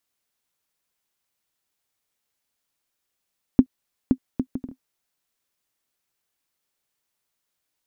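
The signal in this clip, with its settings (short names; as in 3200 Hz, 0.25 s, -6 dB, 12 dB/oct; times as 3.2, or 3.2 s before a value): bouncing ball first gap 0.52 s, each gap 0.55, 258 Hz, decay 72 ms -2 dBFS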